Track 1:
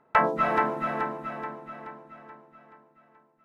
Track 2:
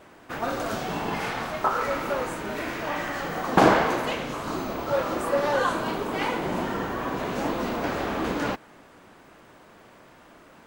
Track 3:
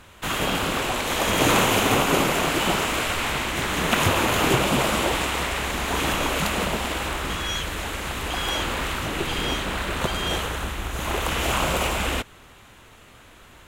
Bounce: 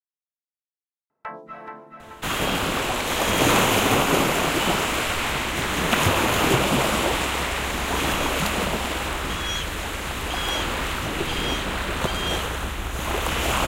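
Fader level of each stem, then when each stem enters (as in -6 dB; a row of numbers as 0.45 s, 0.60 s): -14.0 dB, mute, +0.5 dB; 1.10 s, mute, 2.00 s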